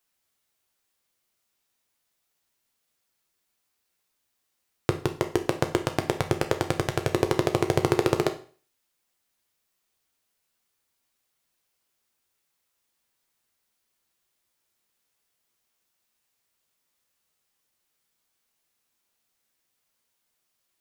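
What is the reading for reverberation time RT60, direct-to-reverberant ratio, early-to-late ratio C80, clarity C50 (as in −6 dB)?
0.40 s, 6.0 dB, 17.5 dB, 13.0 dB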